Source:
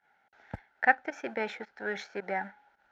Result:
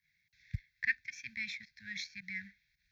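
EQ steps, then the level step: inverse Chebyshev band-stop 360–1000 Hz, stop band 60 dB; fixed phaser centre 2000 Hz, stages 8; +6.5 dB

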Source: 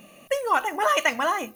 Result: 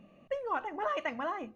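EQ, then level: tape spacing loss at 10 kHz 31 dB; low shelf 210 Hz +8 dB; -8.5 dB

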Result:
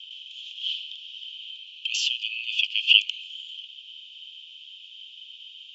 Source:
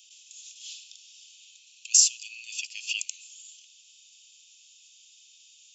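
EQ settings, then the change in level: steep high-pass 2000 Hz 72 dB/oct; synth low-pass 3100 Hz, resonance Q 14; air absorption 90 m; +1.5 dB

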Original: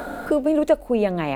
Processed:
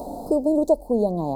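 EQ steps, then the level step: elliptic band-stop 910–4500 Hz, stop band 40 dB; 0.0 dB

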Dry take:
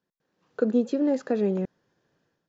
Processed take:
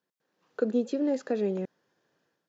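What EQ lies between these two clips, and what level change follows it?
HPF 320 Hz 6 dB/oct; dynamic EQ 1100 Hz, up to -5 dB, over -41 dBFS, Q 0.99; 0.0 dB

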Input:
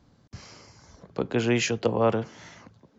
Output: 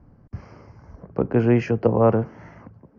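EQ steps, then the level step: running mean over 12 samples; tilt -3 dB/oct; low shelf 460 Hz -6.5 dB; +5.5 dB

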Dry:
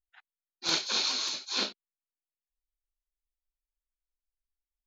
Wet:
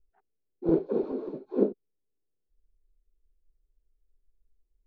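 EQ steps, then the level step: synth low-pass 430 Hz, resonance Q 3.7; tilt -3.5 dB/oct; +4.5 dB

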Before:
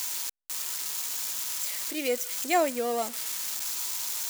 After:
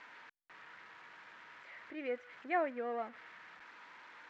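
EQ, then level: ladder low-pass 2100 Hz, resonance 45%; -1.5 dB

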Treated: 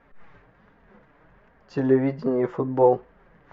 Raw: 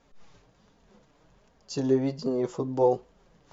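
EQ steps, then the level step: synth low-pass 1800 Hz, resonance Q 2.4; +4.0 dB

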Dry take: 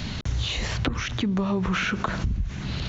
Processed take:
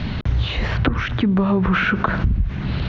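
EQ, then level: dynamic EQ 1500 Hz, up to +4 dB, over -44 dBFS, Q 3.2; air absorption 310 m; +7.5 dB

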